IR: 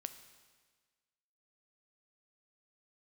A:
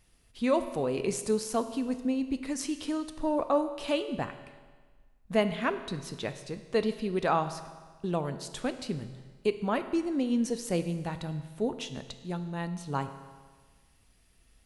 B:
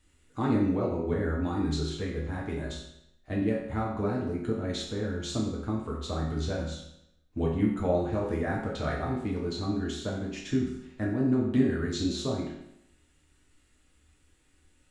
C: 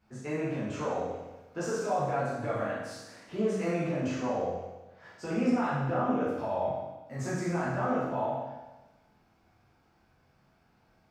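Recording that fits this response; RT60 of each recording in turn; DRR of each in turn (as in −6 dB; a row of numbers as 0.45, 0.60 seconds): A; 1.5, 0.80, 1.1 seconds; 9.5, −4.0, −9.5 decibels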